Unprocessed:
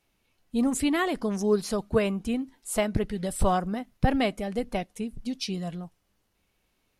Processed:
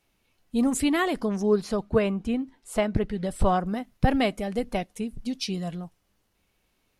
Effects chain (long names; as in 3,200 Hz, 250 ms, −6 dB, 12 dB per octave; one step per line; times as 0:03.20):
0:01.25–0:03.66: low-pass filter 3,100 Hz 6 dB per octave
level +1.5 dB